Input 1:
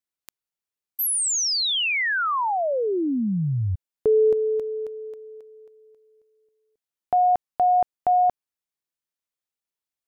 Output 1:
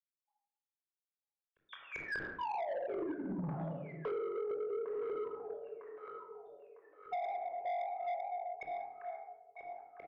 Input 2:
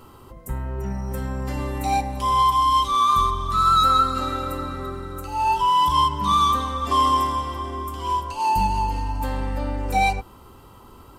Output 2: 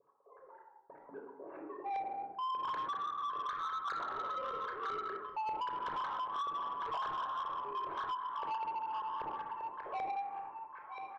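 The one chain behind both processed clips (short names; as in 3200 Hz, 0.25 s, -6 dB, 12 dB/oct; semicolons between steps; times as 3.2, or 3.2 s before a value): sine-wave speech; wavefolder -15 dBFS; step gate "x.xxxxx..xxxx.x" 151 bpm -60 dB; wow and flutter 23 cents; HPF 250 Hz 6 dB/oct; high shelf 2400 Hz -11.5 dB; comb 7.2 ms, depth 44%; thin delay 0.953 s, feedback 48%, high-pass 1500 Hz, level -7.5 dB; LFO low-pass saw up 5.1 Hz 390–1700 Hz; shoebox room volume 2800 m³, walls furnished, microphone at 5.4 m; compressor 12:1, threshold -26 dBFS; soft clip -27.5 dBFS; gain -5.5 dB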